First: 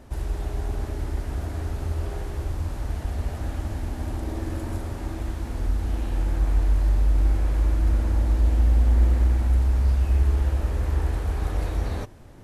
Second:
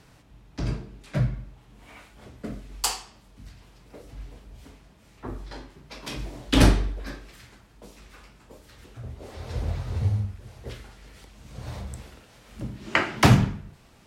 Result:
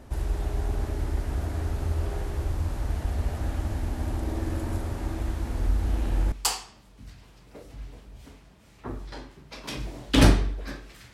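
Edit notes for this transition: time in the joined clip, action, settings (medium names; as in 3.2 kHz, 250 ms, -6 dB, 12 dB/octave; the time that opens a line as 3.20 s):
first
5.62 s: add second from 2.01 s 0.70 s -8.5 dB
6.32 s: go over to second from 2.71 s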